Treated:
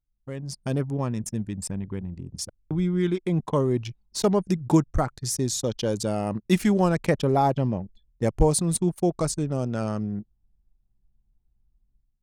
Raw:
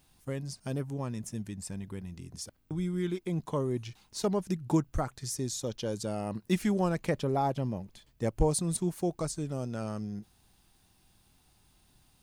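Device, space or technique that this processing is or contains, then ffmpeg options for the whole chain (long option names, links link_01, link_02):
voice memo with heavy noise removal: -af "anlmdn=0.0631,dynaudnorm=framelen=130:gausssize=7:maxgain=12dB,volume=-4dB"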